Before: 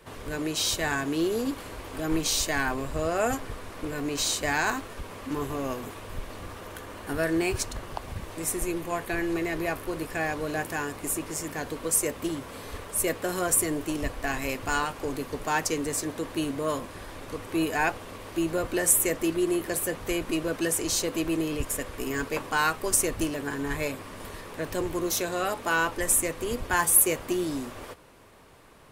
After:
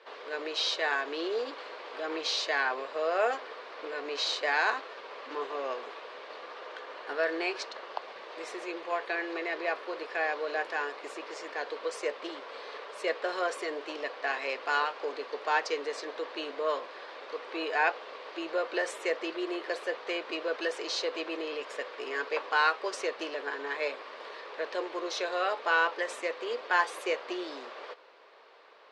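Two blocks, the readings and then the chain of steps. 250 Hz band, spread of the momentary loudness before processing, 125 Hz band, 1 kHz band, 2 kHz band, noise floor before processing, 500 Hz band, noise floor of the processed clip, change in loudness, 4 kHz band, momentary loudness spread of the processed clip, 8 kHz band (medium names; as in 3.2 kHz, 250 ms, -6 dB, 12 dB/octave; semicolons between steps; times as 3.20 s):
-12.5 dB, 15 LU, under -35 dB, -0.5 dB, 0.0 dB, -43 dBFS, -2.0 dB, -46 dBFS, -5.0 dB, -1.0 dB, 14 LU, -20.5 dB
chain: elliptic band-pass 450–4500 Hz, stop band 80 dB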